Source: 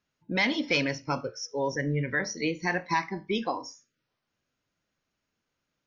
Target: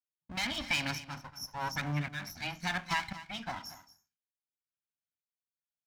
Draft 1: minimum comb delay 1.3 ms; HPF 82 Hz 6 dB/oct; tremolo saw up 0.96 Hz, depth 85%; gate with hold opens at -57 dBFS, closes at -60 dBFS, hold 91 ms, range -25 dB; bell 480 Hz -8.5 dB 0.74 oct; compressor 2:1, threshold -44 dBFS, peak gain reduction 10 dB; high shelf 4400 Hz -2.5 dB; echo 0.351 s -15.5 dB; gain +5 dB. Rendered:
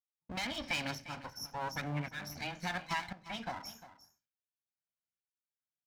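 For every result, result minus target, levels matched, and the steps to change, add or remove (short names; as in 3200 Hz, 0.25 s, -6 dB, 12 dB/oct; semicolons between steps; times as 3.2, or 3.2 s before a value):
echo 0.12 s late; 500 Hz band +5.0 dB; compressor: peak gain reduction +4.5 dB
change: echo 0.231 s -15.5 dB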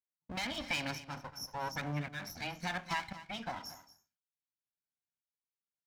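500 Hz band +5.0 dB; compressor: peak gain reduction +4.5 dB
change: bell 480 Hz -19.5 dB 0.74 oct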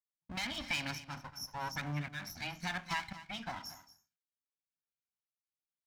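compressor: peak gain reduction +4.5 dB
change: compressor 2:1, threshold -35 dBFS, peak gain reduction 5.5 dB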